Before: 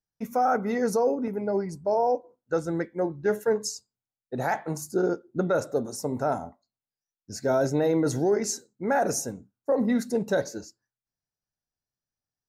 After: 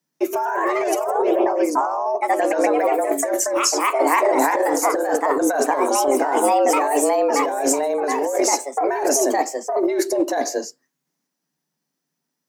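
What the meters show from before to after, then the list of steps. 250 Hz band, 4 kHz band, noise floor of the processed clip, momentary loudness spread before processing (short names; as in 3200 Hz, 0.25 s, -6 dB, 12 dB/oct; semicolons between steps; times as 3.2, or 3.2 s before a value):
+5.0 dB, +11.0 dB, -80 dBFS, 8 LU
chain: echoes that change speed 0.145 s, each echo +2 st, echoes 3; frequency shift +140 Hz; negative-ratio compressor -28 dBFS, ratio -1; gain +9 dB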